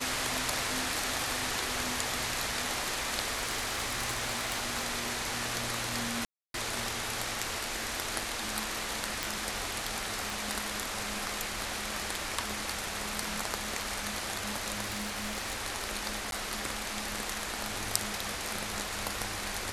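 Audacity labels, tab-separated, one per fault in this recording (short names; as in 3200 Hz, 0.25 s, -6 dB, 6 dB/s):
3.360000	4.860000	clipped -26.5 dBFS
6.250000	6.540000	gap 0.292 s
9.230000	9.230000	pop
10.300000	10.300000	pop
14.820000	15.560000	clipped -29.5 dBFS
16.310000	16.320000	gap 12 ms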